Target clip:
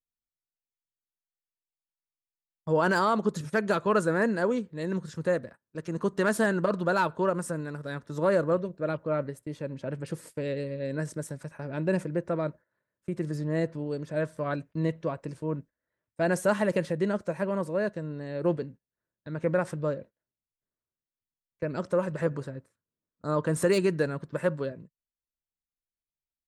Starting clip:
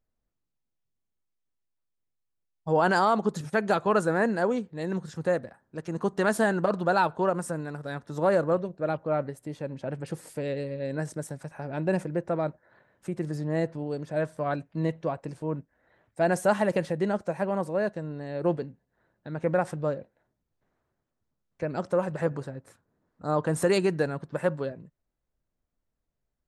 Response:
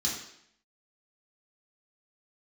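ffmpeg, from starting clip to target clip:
-filter_complex "[0:a]agate=range=-20dB:threshold=-45dB:ratio=16:detection=peak,equalizer=frequency=770:width_type=o:width=0.21:gain=-14,acrossover=split=1400[link_01][link_02];[link_02]asoftclip=type=hard:threshold=-27.5dB[link_03];[link_01][link_03]amix=inputs=2:normalize=0"

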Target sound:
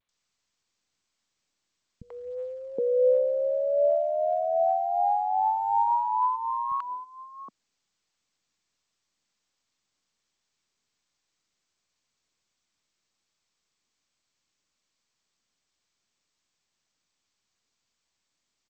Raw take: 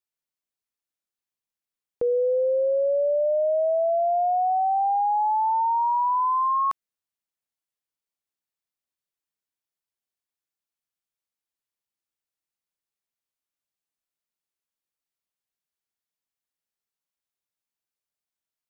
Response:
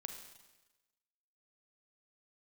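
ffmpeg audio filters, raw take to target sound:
-filter_complex "[0:a]asplit=3[link_01][link_02][link_03];[link_01]afade=type=out:start_time=6.26:duration=0.02[link_04];[link_02]asplit=3[link_05][link_06][link_07];[link_05]bandpass=frequency=730:width_type=q:width=8,volume=0dB[link_08];[link_06]bandpass=frequency=1090:width_type=q:width=8,volume=-6dB[link_09];[link_07]bandpass=frequency=2440:width_type=q:width=8,volume=-9dB[link_10];[link_08][link_09][link_10]amix=inputs=3:normalize=0,afade=type=in:start_time=6.26:duration=0.02,afade=type=out:start_time=6.7:duration=0.02[link_11];[link_03]afade=type=in:start_time=6.7:duration=0.02[link_12];[link_04][link_11][link_12]amix=inputs=3:normalize=0,equalizer=frequency=220:width_type=o:width=1.4:gain=11,aphaser=in_gain=1:out_gain=1:delay=1.3:decay=0.4:speed=1.3:type=triangular,acrossover=split=180|750[link_13][link_14][link_15];[link_15]adelay=90[link_16];[link_14]adelay=770[link_17];[link_13][link_17][link_16]amix=inputs=3:normalize=0,volume=-2.5dB" -ar 16000 -c:a g722

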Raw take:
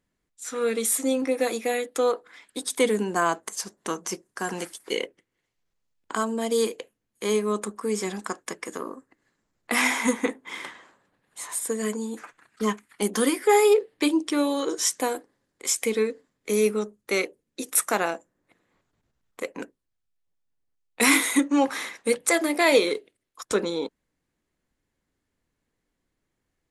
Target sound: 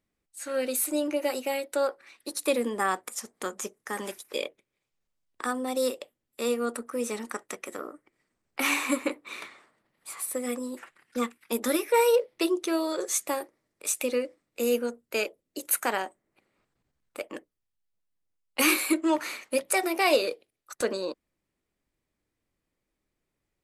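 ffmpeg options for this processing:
ffmpeg -i in.wav -af "asetrate=49833,aresample=44100,volume=-3.5dB" out.wav

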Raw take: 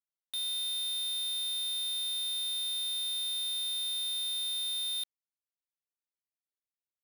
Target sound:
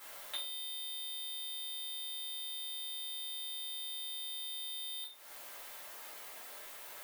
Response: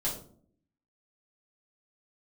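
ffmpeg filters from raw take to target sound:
-filter_complex "[0:a]aeval=exprs='val(0)+0.5*0.00398*sgn(val(0))':channel_layout=same,highshelf=frequency=7200:gain=11,acompressor=threshold=-42dB:ratio=10,acrossover=split=430 2900:gain=0.0891 1 0.2[link_01][link_02][link_03];[link_01][link_02][link_03]amix=inputs=3:normalize=0[link_04];[1:a]atrim=start_sample=2205[link_05];[link_04][link_05]afir=irnorm=-1:irlink=0,volume=10dB"

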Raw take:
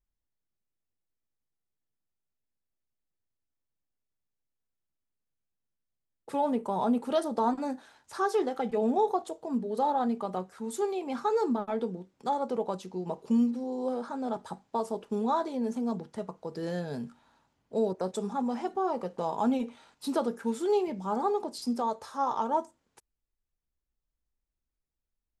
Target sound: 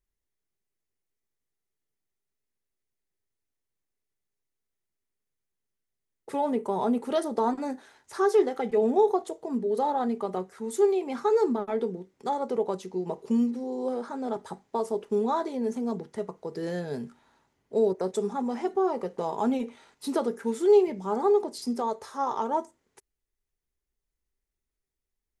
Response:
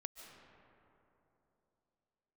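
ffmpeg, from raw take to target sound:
-af "equalizer=frequency=400:width_type=o:width=0.33:gain=9,equalizer=frequency=2000:width_type=o:width=0.33:gain=6,equalizer=frequency=6300:width_type=o:width=0.33:gain=3,equalizer=frequency=10000:width_type=o:width=0.33:gain=4"

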